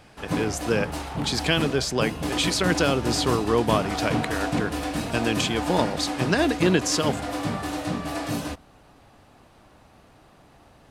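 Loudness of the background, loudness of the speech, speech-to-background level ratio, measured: -29.0 LUFS, -25.0 LUFS, 4.0 dB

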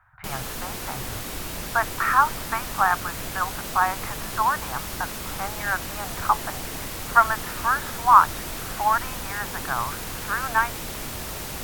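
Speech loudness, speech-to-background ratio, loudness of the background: -24.0 LUFS, 8.0 dB, -32.0 LUFS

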